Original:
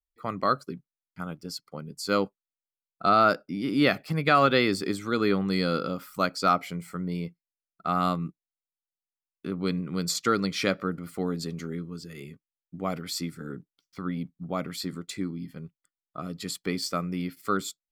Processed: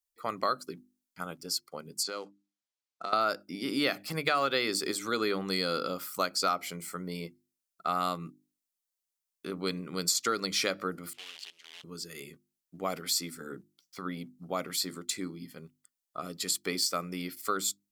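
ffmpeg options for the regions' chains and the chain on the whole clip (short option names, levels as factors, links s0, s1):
-filter_complex "[0:a]asettb=1/sr,asplit=3[s0][s1][s2];[s0]atrim=end=2.034[s3];[s1]atrim=start=2.03:end=3.13,asetpts=PTS-STARTPTS,afade=t=in:d=0.004:c=qsin,afade=t=out:st=1.096:d=0.004:c=qsin,acompressor=threshold=0.0251:ratio=8:attack=3.2:release=140:knee=1:detection=peak,acrusher=bits=7:mode=log:mix=0:aa=0.000001,highpass=170,lowpass=5400[s4];[s2]atrim=start=3.126[s5];[s3][s4]acrossfade=d=0.004:c1=hsin:c2=qsin[s6];[s6][s5]acrossfade=d=0.004:c1=qsin:c2=hsin,asettb=1/sr,asplit=3[s7][s8][s9];[s7]atrim=end=11.134[s10];[s8]atrim=start=11.13:end=11.84,asetpts=PTS-STARTPTS,afade=t=in:d=0.004:c=qsin,afade=t=out:st=0.706:d=0.004:c=qsin,acrusher=bits=6:dc=4:mix=0:aa=0.000001,bandpass=f=3000:t=q:w=4.1[s11];[s9]atrim=start=11.836[s12];[s10][s11]acrossfade=d=0.004:c1=hsin:c2=qsin[s13];[s13][s12]acrossfade=d=0.004:c1=qsin:c2=hsin,bass=f=250:g=-11,treble=f=4000:g=9,bandreject=f=50:t=h:w=6,bandreject=f=100:t=h:w=6,bandreject=f=150:t=h:w=6,bandreject=f=200:t=h:w=6,bandreject=f=250:t=h:w=6,bandreject=f=300:t=h:w=6,bandreject=f=350:t=h:w=6,acompressor=threshold=0.0501:ratio=3"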